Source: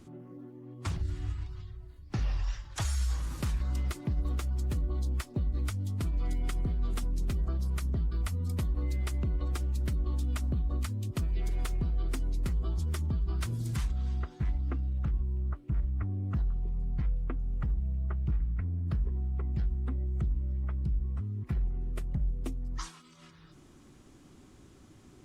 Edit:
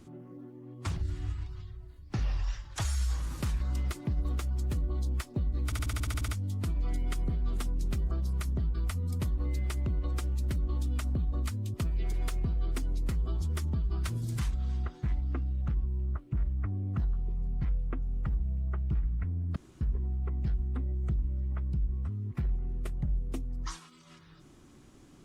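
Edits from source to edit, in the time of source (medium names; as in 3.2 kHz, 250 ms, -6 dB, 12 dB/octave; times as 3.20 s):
5.65 s: stutter 0.07 s, 10 plays
18.93 s: insert room tone 0.25 s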